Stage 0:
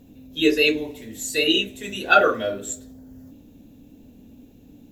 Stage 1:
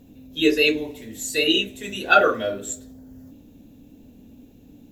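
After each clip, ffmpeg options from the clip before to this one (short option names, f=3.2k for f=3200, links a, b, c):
-af anull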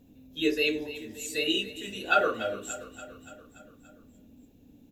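-af "aecho=1:1:288|576|864|1152|1440|1728:0.178|0.107|0.064|0.0384|0.023|0.0138,volume=-8dB"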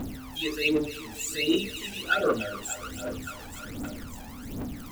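-af "aeval=exprs='val(0)+0.5*0.02*sgn(val(0))':c=same,aphaser=in_gain=1:out_gain=1:delay=1.3:decay=0.73:speed=1.3:type=triangular,volume=-4dB"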